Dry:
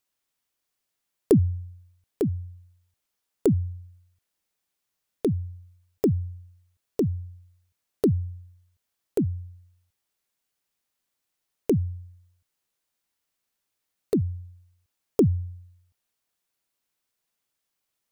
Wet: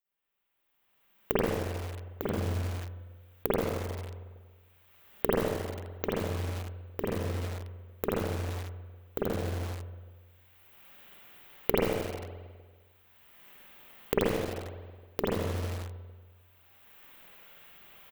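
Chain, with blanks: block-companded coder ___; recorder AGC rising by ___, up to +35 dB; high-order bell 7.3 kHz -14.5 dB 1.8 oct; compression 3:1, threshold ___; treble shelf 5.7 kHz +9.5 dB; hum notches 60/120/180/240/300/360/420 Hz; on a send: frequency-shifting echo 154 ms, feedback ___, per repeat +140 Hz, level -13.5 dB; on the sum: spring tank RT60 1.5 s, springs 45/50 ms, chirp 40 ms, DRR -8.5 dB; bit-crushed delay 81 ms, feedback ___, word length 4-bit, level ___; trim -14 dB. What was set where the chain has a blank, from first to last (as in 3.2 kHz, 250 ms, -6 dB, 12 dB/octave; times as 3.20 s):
3-bit, 20 dB/s, -22 dBFS, 31%, 35%, -3 dB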